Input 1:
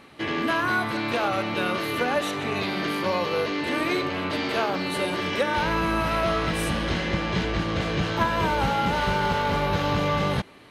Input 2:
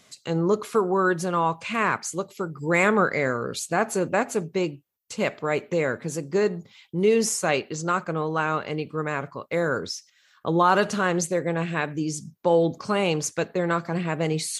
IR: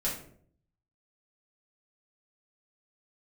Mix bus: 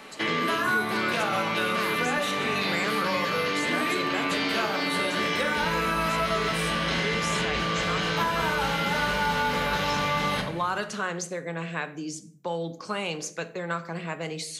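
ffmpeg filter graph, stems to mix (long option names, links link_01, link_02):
-filter_complex "[0:a]volume=2dB,asplit=2[link_01][link_02];[link_02]volume=-3.5dB[link_03];[1:a]volume=-4dB,asplit=2[link_04][link_05];[link_05]volume=-14dB[link_06];[2:a]atrim=start_sample=2205[link_07];[link_03][link_06]amix=inputs=2:normalize=0[link_08];[link_08][link_07]afir=irnorm=-1:irlink=0[link_09];[link_01][link_04][link_09]amix=inputs=3:normalize=0,lowshelf=frequency=250:gain=-12,acrossover=split=260|990|6400[link_10][link_11][link_12][link_13];[link_10]acompressor=threshold=-33dB:ratio=4[link_14];[link_11]acompressor=threshold=-34dB:ratio=4[link_15];[link_12]acompressor=threshold=-27dB:ratio=4[link_16];[link_13]acompressor=threshold=-44dB:ratio=4[link_17];[link_14][link_15][link_16][link_17]amix=inputs=4:normalize=0"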